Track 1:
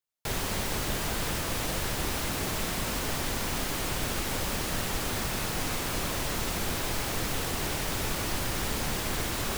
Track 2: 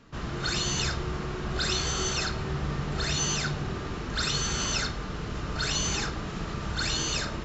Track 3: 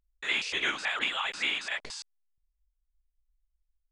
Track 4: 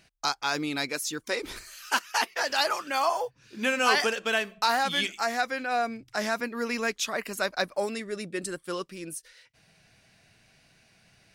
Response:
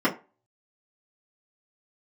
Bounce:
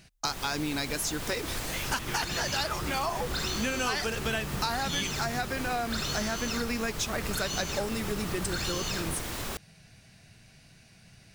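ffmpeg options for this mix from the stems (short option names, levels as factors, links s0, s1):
-filter_complex "[0:a]volume=0.631[s0];[1:a]adelay=1750,volume=0.891[s1];[2:a]adelay=1450,volume=0.355[s2];[3:a]bass=f=250:g=9,treble=f=4000:g=4,volume=1.19[s3];[s0][s1][s2][s3]amix=inputs=4:normalize=0,acompressor=threshold=0.0398:ratio=4"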